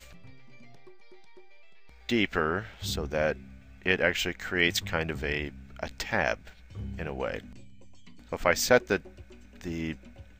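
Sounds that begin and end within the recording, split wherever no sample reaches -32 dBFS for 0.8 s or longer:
2.09–7.38

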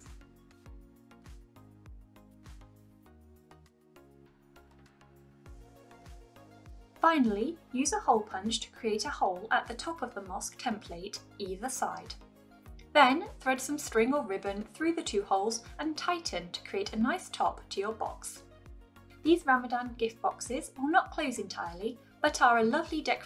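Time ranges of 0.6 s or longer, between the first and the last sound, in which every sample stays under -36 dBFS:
12.12–12.95
18.31–19.25

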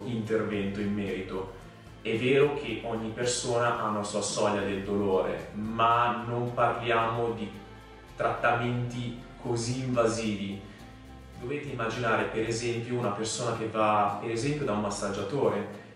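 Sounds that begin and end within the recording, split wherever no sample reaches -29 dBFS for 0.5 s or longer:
2.05–7.44
8.2–10.55

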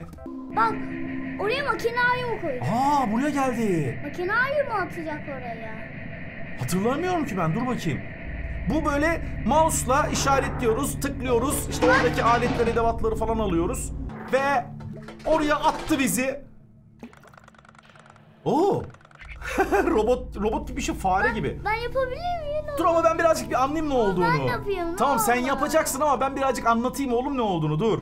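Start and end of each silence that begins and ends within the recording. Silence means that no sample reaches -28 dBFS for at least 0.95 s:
17.03–18.46

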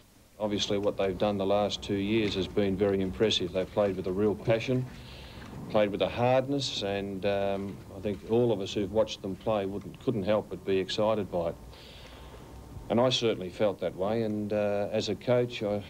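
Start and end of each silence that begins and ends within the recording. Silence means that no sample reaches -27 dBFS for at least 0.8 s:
4.81–5.75
11.51–12.91

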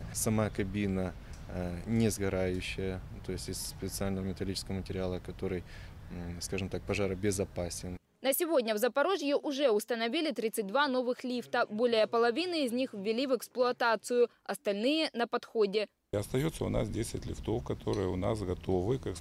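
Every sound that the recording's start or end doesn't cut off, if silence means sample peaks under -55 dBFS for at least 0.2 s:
8.23–15.88

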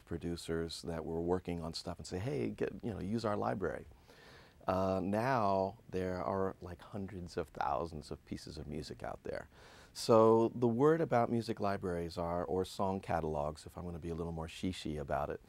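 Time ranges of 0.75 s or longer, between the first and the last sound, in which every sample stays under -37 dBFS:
3.78–4.68

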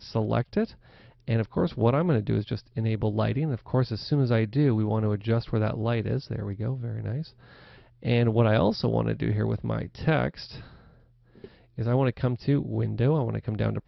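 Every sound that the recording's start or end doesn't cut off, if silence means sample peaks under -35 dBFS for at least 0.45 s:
1.28–7.23
8.03–10.61

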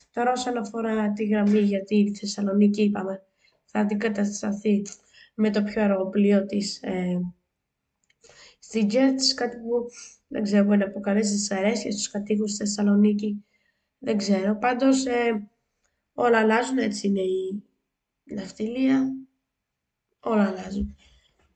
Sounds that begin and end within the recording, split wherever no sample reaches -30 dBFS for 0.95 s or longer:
8.72–19.15

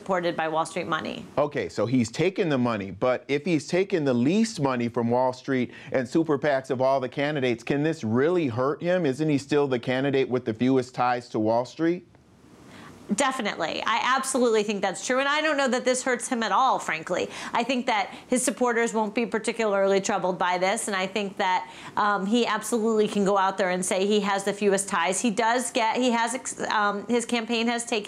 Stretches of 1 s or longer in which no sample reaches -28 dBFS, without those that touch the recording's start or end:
11.96–13.1

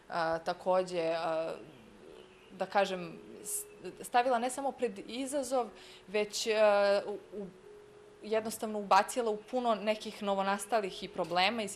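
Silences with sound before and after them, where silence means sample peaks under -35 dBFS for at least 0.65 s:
1.58–2.61
7.43–8.26

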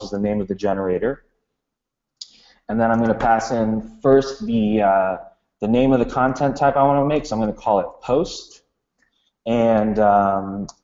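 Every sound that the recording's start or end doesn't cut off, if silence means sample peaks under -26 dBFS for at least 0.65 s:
2.22–8.39

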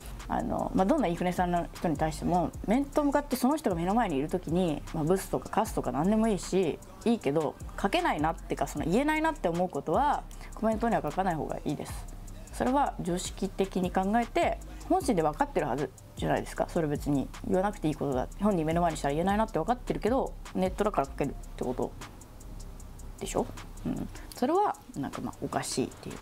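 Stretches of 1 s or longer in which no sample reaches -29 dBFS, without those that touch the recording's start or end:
21.87–23.21

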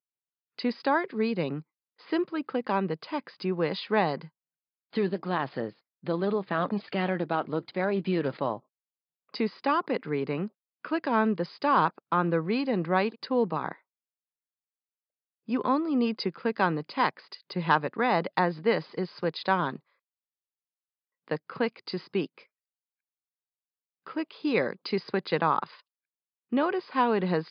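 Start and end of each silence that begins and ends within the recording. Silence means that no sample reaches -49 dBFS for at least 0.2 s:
1.62–2
4.28–4.93
5.71–6.03
8.6–9.34
10.48–10.85
13.76–15.48
19.79–21.28
22.43–24.07
25.8–26.52

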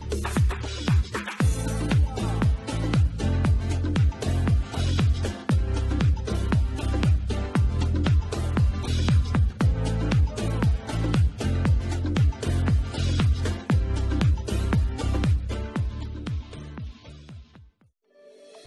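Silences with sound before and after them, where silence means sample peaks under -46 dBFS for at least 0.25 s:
17.64–18.24

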